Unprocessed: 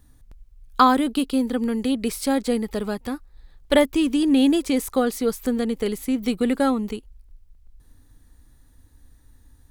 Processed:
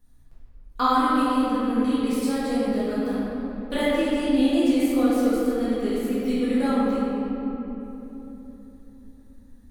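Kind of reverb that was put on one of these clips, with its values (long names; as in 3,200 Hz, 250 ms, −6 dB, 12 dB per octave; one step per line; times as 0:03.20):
rectangular room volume 200 cubic metres, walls hard, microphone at 1.8 metres
level −13.5 dB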